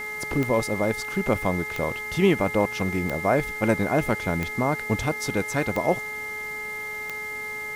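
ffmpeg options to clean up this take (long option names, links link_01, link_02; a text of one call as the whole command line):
ffmpeg -i in.wav -af "adeclick=threshold=4,bandreject=frequency=425.4:width_type=h:width=4,bandreject=frequency=850.8:width_type=h:width=4,bandreject=frequency=1276.2:width_type=h:width=4,bandreject=frequency=1701.6:width_type=h:width=4,bandreject=frequency=2100:width=30,afwtdn=0.0045" out.wav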